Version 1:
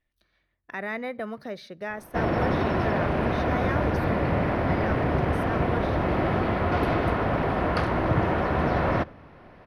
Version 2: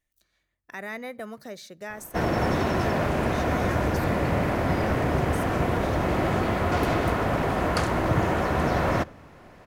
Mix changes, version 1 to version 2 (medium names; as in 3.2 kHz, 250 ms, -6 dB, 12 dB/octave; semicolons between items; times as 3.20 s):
speech -4.0 dB; master: remove boxcar filter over 6 samples